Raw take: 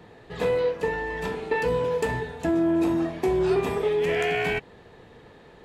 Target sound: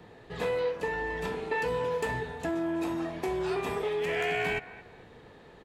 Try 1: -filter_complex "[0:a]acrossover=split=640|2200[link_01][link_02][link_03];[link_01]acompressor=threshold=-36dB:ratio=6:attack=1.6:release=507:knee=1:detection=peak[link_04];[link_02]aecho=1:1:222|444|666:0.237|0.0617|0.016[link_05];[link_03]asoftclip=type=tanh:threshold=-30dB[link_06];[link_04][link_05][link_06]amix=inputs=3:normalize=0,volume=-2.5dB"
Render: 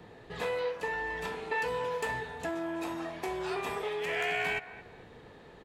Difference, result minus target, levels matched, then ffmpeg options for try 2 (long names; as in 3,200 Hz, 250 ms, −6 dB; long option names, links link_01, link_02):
downward compressor: peak gain reduction +7.5 dB
-filter_complex "[0:a]acrossover=split=640|2200[link_01][link_02][link_03];[link_01]acompressor=threshold=-27dB:ratio=6:attack=1.6:release=507:knee=1:detection=peak[link_04];[link_02]aecho=1:1:222|444|666:0.237|0.0617|0.016[link_05];[link_03]asoftclip=type=tanh:threshold=-30dB[link_06];[link_04][link_05][link_06]amix=inputs=3:normalize=0,volume=-2.5dB"